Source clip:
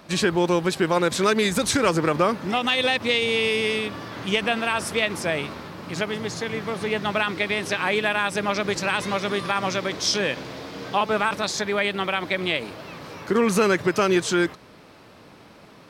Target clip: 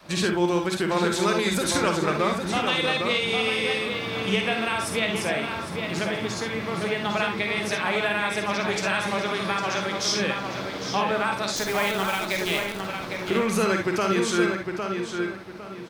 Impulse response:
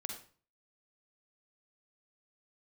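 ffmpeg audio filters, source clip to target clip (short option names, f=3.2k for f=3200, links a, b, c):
-filter_complex "[0:a]adynamicequalizer=threshold=0.0224:dfrequency=230:dqfactor=0.77:tfrequency=230:tqfactor=0.77:attack=5:release=100:ratio=0.375:range=1.5:mode=cutabove:tftype=bell,asplit=2[a][b];[b]acompressor=threshold=-29dB:ratio=6,volume=1.5dB[c];[a][c]amix=inputs=2:normalize=0,asettb=1/sr,asplit=3[d][e][f];[d]atrim=end=11.564[g];[e]atrim=start=11.56:end=12.82,asetpts=PTS-STARTPTS,afade=t=in:d=0.004:c=qsin,afade=t=out:st=1.256:d=0.004:c=qsin,acrusher=bits=5:dc=4:mix=0:aa=0.000001[h];[f]atrim=start=12.816[i];[g][h]acrossfade=d=0.004:c1=hsin:c2=qsin[j];[j][i]acrossfade=d=0.004:c1=qsin:c2=hsin,asplit=2[k][l];[l]adelay=806,lowpass=f=3.5k:p=1,volume=-5dB,asplit=2[m][n];[n]adelay=806,lowpass=f=3.5k:p=1,volume=0.31,asplit=2[o][p];[p]adelay=806,lowpass=f=3.5k:p=1,volume=0.31,asplit=2[q][r];[r]adelay=806,lowpass=f=3.5k:p=1,volume=0.31[s];[k][m][o][q][s]amix=inputs=5:normalize=0[t];[1:a]atrim=start_sample=2205,atrim=end_sample=3528[u];[t][u]afir=irnorm=-1:irlink=0,volume=-3.5dB"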